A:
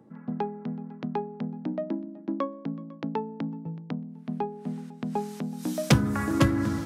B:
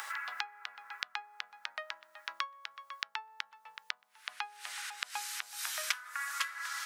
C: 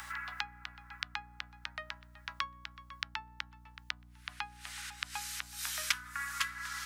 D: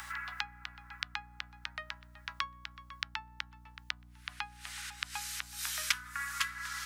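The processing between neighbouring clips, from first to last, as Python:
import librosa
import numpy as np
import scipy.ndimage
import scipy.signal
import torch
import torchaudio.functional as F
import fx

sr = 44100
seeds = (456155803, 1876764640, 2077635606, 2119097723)

y1 = scipy.signal.sosfilt(scipy.signal.cheby2(4, 70, 310.0, 'highpass', fs=sr, output='sos'), x)
y1 = fx.band_squash(y1, sr, depth_pct=100)
y1 = F.gain(torch.from_numpy(y1), 8.0).numpy()
y2 = fx.highpass(y1, sr, hz=750.0, slope=6)
y2 = fx.add_hum(y2, sr, base_hz=60, snr_db=14)
y2 = fx.band_widen(y2, sr, depth_pct=40)
y3 = fx.dynamic_eq(y2, sr, hz=440.0, q=1.0, threshold_db=-59.0, ratio=4.0, max_db=-5)
y3 = F.gain(torch.from_numpy(y3), 1.0).numpy()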